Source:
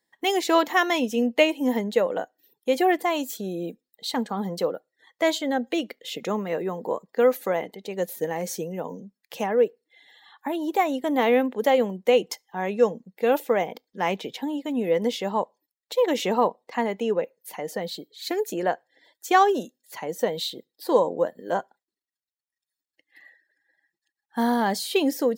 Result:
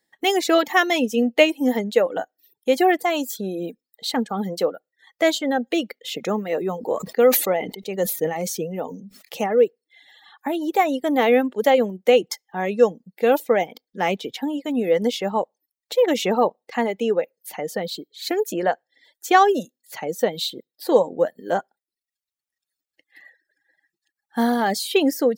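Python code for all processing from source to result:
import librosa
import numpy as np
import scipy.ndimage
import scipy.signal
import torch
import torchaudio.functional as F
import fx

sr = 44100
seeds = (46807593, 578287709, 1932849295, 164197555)

y = fx.chain(x, sr, fx.notch(hz=1600.0, q=8.0),
    fx.sustainer(db_per_s=81.0), at=(6.46, 9.64))
y = fx.notch(y, sr, hz=1000.0, q=6.9)
y = fx.dereverb_blind(y, sr, rt60_s=0.55)
y = y * librosa.db_to_amplitude(4.0)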